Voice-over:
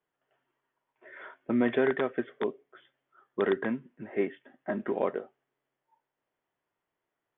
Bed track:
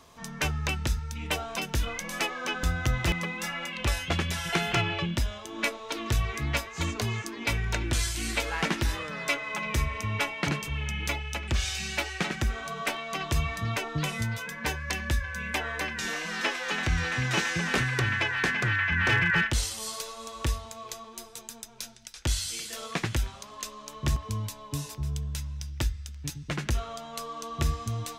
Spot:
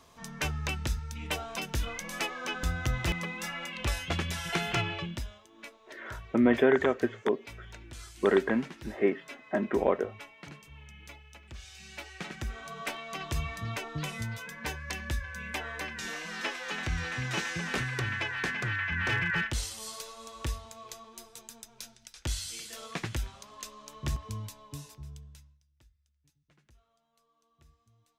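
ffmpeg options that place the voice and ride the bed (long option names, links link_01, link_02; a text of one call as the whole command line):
ffmpeg -i stem1.wav -i stem2.wav -filter_complex "[0:a]adelay=4850,volume=3dB[link_01];[1:a]volume=9.5dB,afade=type=out:start_time=4.8:duration=0.68:silence=0.177828,afade=type=in:start_time=11.69:duration=1.21:silence=0.223872,afade=type=out:start_time=24.28:duration=1.32:silence=0.0334965[link_02];[link_01][link_02]amix=inputs=2:normalize=0" out.wav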